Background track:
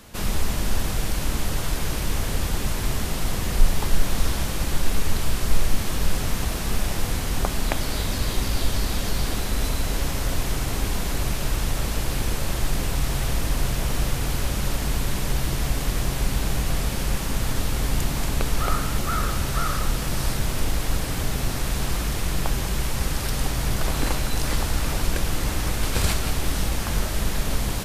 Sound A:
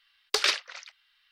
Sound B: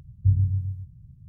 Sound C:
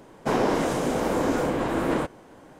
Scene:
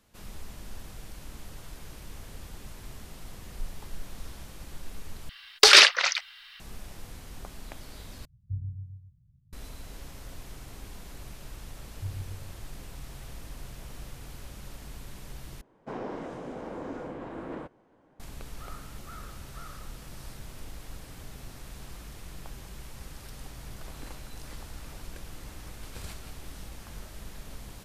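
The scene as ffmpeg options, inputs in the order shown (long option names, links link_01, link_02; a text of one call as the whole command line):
ffmpeg -i bed.wav -i cue0.wav -i cue1.wav -i cue2.wav -filter_complex "[2:a]asplit=2[link_01][link_02];[0:a]volume=-19dB[link_03];[1:a]alimiter=level_in=18.5dB:limit=-1dB:release=50:level=0:latency=1[link_04];[3:a]aemphasis=mode=reproduction:type=75fm[link_05];[link_03]asplit=4[link_06][link_07][link_08][link_09];[link_06]atrim=end=5.294[link_10];[link_04]atrim=end=1.31,asetpts=PTS-STARTPTS,volume=-0.5dB[link_11];[link_07]atrim=start=6.596:end=8.254[link_12];[link_01]atrim=end=1.28,asetpts=PTS-STARTPTS,volume=-14.5dB[link_13];[link_08]atrim=start=9.526:end=15.614[link_14];[link_05]atrim=end=2.59,asetpts=PTS-STARTPTS,volume=-14.5dB[link_15];[link_09]atrim=start=18.196[link_16];[link_02]atrim=end=1.28,asetpts=PTS-STARTPTS,volume=-16.5dB,afade=type=in:duration=0.004:curve=hsin,afade=type=out:start_time=1.276:duration=0.004:curve=hsin,adelay=11770[link_17];[link_10][link_11]acrossfade=duration=0.004:curve1=hsin:curve2=hsin[link_18];[link_18][link_12]acrossfade=duration=0.004:curve1=hsin:curve2=hsin[link_19];[link_19][link_13]acrossfade=duration=0.004:curve1=hsin:curve2=hsin[link_20];[link_20][link_14]acrossfade=duration=0.004:curve1=hsin:curve2=hsin[link_21];[link_21][link_15]acrossfade=duration=0.004:curve1=hsin:curve2=hsin[link_22];[link_22][link_16]acrossfade=duration=0.004:curve1=hsin:curve2=hsin[link_23];[link_23][link_17]amix=inputs=2:normalize=0" out.wav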